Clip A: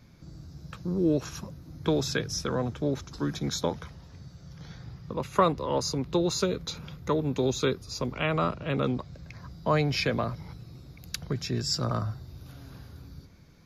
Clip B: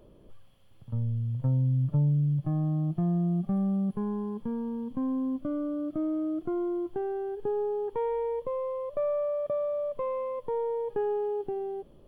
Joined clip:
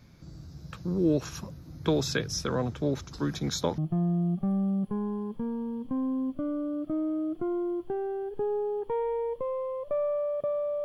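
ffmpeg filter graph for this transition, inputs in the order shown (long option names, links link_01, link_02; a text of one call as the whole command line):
ffmpeg -i cue0.wav -i cue1.wav -filter_complex "[0:a]apad=whole_dur=10.84,atrim=end=10.84,atrim=end=3.782[link_01];[1:a]atrim=start=2.838:end=9.9[link_02];[link_01][link_02]acrossfade=duration=0.004:curve1=hsin:curve2=hsin" out.wav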